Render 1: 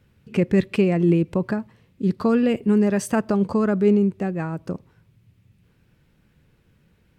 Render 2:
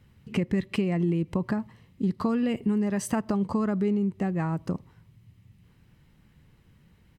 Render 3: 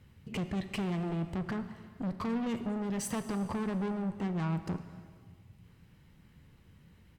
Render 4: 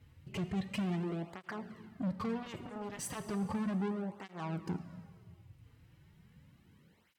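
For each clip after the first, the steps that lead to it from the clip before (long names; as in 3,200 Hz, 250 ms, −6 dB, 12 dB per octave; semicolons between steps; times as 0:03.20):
comb filter 1 ms, depth 33%; downward compressor 5 to 1, threshold −23 dBFS, peak gain reduction 10 dB
tube saturation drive 31 dB, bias 0.3; dense smooth reverb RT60 2 s, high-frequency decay 0.95×, DRR 9.5 dB
through-zero flanger with one copy inverted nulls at 0.35 Hz, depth 5.5 ms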